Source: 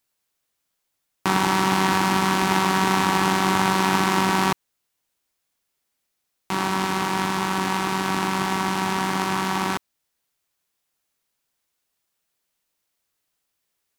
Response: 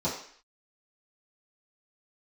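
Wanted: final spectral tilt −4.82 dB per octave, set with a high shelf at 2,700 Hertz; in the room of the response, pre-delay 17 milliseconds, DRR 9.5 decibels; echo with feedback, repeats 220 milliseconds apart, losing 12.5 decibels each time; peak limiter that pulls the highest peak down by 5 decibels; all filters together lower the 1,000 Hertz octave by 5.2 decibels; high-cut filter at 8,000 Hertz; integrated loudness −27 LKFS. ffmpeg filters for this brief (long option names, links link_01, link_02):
-filter_complex "[0:a]lowpass=8000,equalizer=frequency=1000:width_type=o:gain=-5.5,highshelf=frequency=2700:gain=-5,alimiter=limit=-11dB:level=0:latency=1,aecho=1:1:220|440|660:0.237|0.0569|0.0137,asplit=2[link_01][link_02];[1:a]atrim=start_sample=2205,adelay=17[link_03];[link_02][link_03]afir=irnorm=-1:irlink=0,volume=-18.5dB[link_04];[link_01][link_04]amix=inputs=2:normalize=0,volume=-1.5dB"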